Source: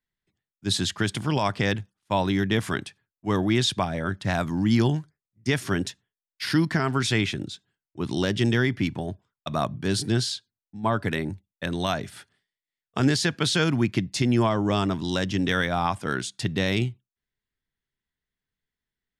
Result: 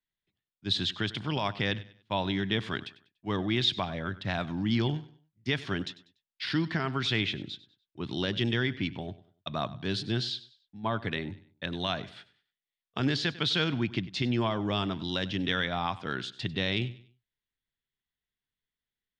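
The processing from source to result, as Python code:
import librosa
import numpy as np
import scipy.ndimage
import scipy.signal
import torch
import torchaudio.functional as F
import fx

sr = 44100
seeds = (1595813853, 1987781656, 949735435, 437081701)

p1 = fx.lowpass_res(x, sr, hz=3600.0, q=2.2)
p2 = p1 + fx.echo_feedback(p1, sr, ms=97, feedback_pct=33, wet_db=-18.0, dry=0)
y = p2 * 10.0 ** (-7.0 / 20.0)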